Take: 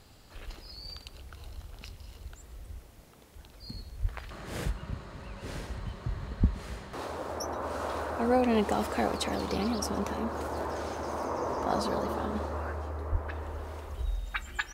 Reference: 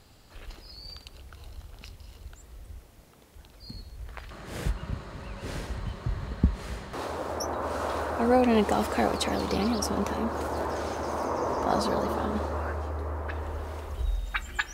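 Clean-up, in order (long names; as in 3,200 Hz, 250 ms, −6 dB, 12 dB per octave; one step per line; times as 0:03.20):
0:04.01–0:04.13: high-pass filter 140 Hz 24 dB per octave
0:06.39–0:06.51: high-pass filter 140 Hz 24 dB per octave
0:13.11–0:13.23: high-pass filter 140 Hz 24 dB per octave
echo removal 122 ms −22.5 dB
level 0 dB, from 0:04.65 +3.5 dB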